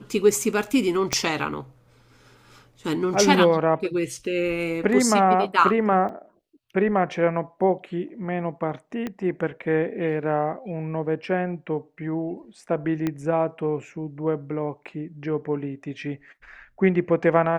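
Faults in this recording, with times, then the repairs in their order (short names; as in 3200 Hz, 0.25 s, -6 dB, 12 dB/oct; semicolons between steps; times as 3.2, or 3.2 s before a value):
1.13 pop -6 dBFS
6.09 gap 3.6 ms
9.07 pop -17 dBFS
13.07 pop -13 dBFS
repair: de-click; interpolate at 6.09, 3.6 ms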